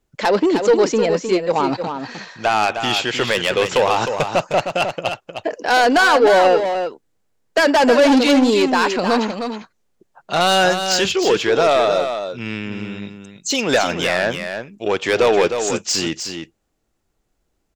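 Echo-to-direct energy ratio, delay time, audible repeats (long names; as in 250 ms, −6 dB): −7.5 dB, 309 ms, 1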